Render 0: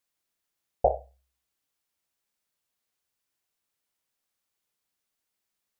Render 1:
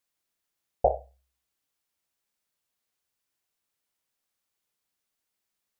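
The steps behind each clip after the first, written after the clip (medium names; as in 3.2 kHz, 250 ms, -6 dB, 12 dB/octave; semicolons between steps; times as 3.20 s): no audible change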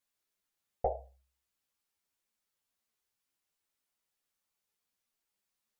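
compression 2.5:1, threshold -24 dBFS, peak gain reduction 6 dB; three-phase chorus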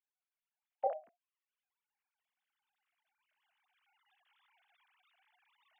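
formants replaced by sine waves; recorder AGC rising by 8.7 dB/s; trim -2 dB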